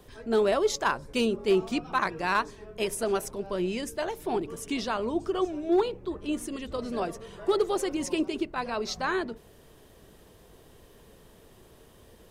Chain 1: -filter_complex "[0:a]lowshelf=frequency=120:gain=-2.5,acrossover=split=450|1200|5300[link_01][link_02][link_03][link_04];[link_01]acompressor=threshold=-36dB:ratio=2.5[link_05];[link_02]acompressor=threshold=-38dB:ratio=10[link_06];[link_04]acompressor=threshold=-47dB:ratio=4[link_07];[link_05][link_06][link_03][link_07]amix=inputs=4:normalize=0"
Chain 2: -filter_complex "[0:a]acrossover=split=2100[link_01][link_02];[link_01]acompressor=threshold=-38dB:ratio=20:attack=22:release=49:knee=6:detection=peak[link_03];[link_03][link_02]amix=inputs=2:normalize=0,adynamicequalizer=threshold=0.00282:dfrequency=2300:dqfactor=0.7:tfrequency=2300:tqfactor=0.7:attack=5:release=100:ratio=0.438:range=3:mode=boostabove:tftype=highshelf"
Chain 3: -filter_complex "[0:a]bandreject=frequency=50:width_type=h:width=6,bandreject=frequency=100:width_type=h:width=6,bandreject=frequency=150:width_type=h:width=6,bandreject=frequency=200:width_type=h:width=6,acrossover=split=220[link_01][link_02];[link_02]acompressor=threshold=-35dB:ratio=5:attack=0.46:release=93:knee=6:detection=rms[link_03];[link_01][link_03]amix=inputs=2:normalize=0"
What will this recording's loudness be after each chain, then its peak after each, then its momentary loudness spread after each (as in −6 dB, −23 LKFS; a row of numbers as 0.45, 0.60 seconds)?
−34.0, −34.0, −38.0 LKFS; −16.0, −13.5, −23.5 dBFS; 6, 8, 20 LU